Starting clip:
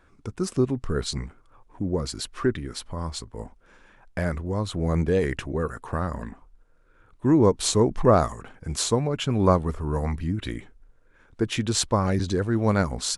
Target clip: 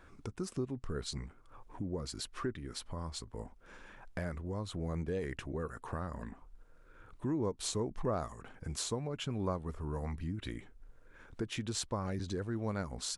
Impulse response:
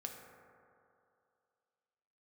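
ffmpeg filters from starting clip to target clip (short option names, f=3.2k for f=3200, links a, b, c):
-af "acompressor=threshold=-47dB:ratio=2,volume=1dB"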